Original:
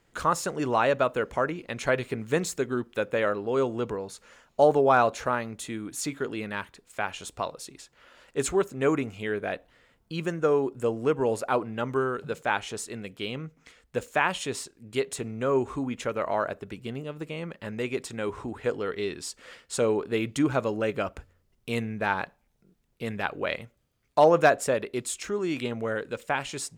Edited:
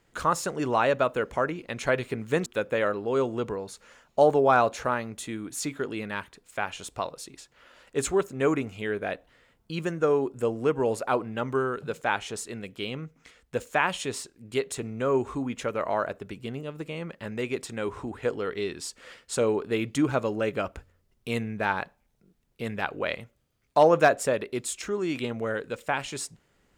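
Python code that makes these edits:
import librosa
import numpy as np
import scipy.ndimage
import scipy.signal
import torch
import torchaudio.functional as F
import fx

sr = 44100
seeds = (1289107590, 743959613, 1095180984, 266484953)

y = fx.edit(x, sr, fx.cut(start_s=2.46, length_s=0.41), tone=tone)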